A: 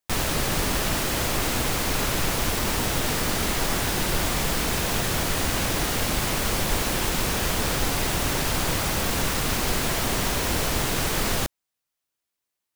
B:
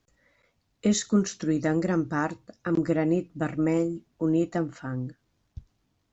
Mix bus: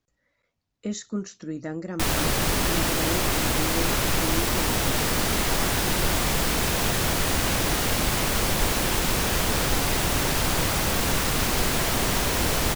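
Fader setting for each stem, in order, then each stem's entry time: +1.0 dB, -7.5 dB; 1.90 s, 0.00 s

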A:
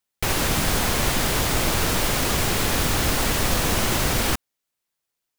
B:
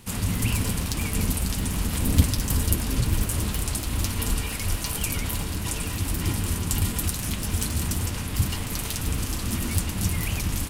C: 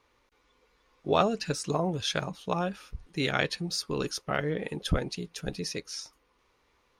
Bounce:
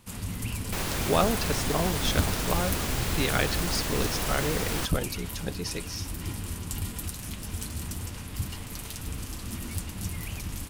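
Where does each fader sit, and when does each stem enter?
-9.0 dB, -8.5 dB, 0.0 dB; 0.50 s, 0.00 s, 0.00 s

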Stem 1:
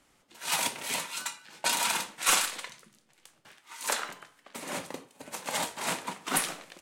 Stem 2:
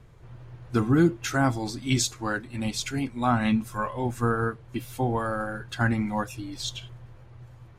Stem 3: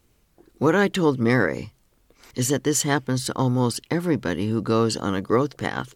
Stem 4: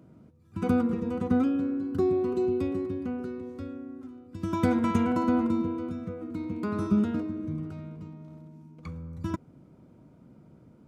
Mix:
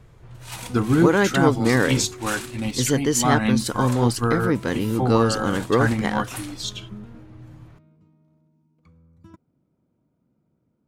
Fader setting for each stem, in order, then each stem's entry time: -8.0 dB, +2.5 dB, +0.5 dB, -15.5 dB; 0.00 s, 0.00 s, 0.40 s, 0.00 s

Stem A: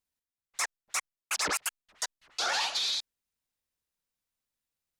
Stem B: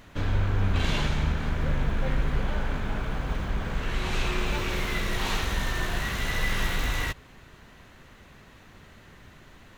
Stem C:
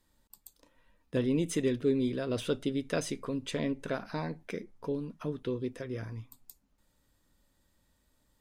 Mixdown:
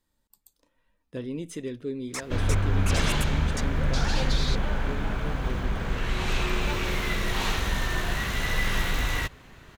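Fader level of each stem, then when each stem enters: -4.0 dB, +1.0 dB, -5.0 dB; 1.55 s, 2.15 s, 0.00 s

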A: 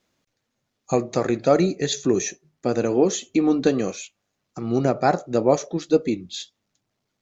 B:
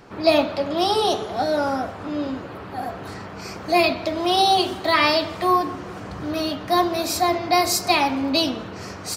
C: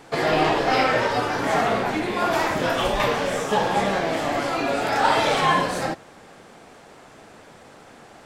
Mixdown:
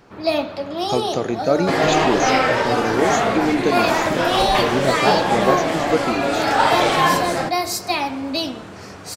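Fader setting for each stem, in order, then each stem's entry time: -1.0 dB, -3.0 dB, +3.0 dB; 0.00 s, 0.00 s, 1.55 s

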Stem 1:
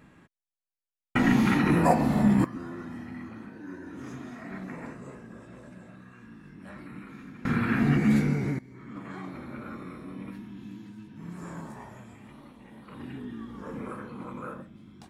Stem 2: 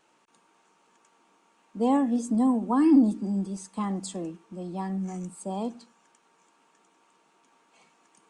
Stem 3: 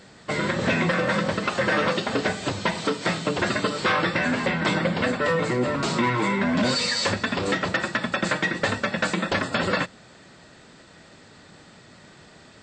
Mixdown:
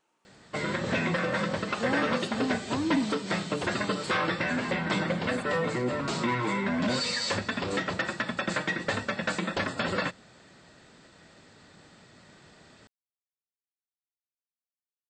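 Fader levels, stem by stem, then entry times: mute, -9.0 dB, -5.5 dB; mute, 0.00 s, 0.25 s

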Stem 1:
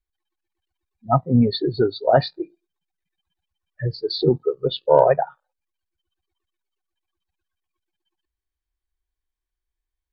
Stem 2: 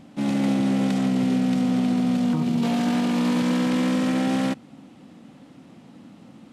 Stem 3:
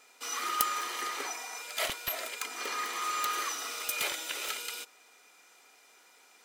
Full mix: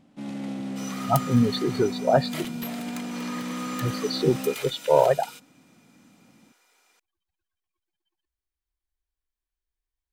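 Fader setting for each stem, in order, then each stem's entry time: -4.0 dB, -11.0 dB, -4.5 dB; 0.00 s, 0.00 s, 0.55 s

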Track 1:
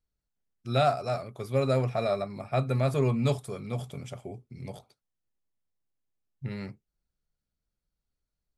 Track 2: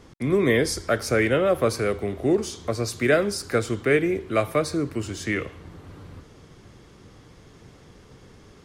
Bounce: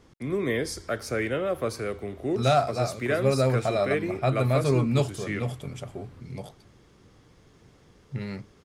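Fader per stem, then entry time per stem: +2.5 dB, -7.0 dB; 1.70 s, 0.00 s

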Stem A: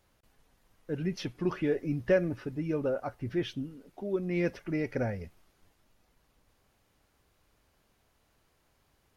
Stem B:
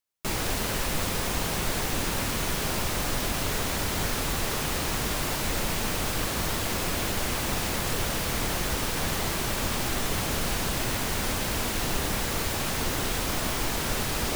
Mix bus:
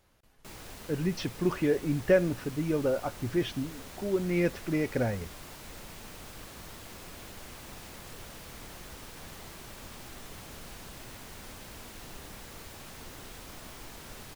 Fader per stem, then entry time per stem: +2.5 dB, -17.5 dB; 0.00 s, 0.20 s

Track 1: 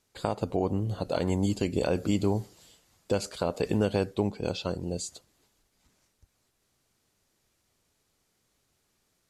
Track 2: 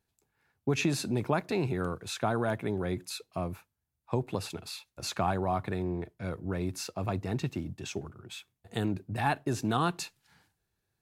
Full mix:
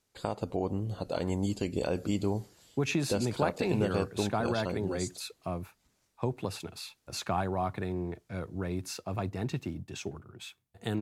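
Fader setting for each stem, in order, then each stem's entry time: -4.0 dB, -1.5 dB; 0.00 s, 2.10 s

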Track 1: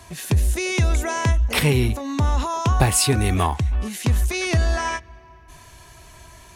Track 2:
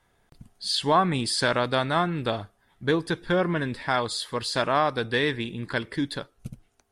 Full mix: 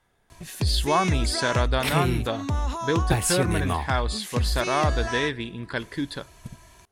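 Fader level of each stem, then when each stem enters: -6.0 dB, -1.5 dB; 0.30 s, 0.00 s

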